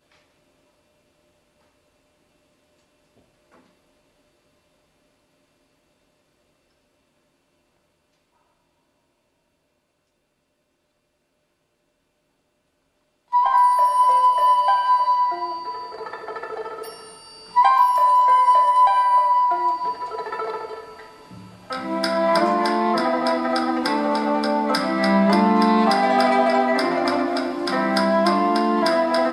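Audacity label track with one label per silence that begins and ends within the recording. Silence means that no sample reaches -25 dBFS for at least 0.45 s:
16.890000	17.560000	silence
20.740000	21.700000	silence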